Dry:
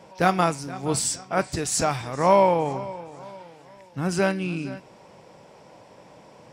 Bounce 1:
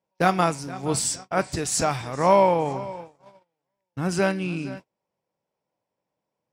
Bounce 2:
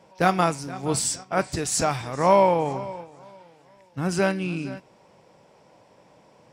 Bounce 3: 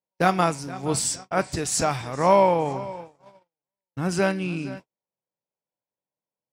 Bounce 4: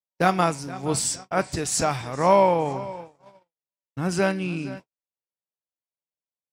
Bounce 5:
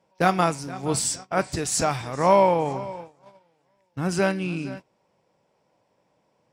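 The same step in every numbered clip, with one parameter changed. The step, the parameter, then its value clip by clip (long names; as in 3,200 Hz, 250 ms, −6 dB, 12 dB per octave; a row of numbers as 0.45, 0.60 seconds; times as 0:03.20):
noise gate, range: −34, −6, −47, −59, −19 decibels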